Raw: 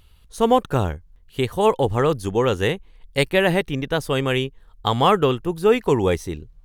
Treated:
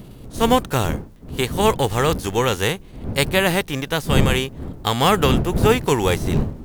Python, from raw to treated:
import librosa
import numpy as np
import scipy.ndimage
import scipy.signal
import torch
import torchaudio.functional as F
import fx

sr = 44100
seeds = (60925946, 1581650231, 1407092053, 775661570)

y = fx.envelope_flatten(x, sr, power=0.6)
y = fx.dmg_wind(y, sr, seeds[0], corner_hz=210.0, level_db=-25.0)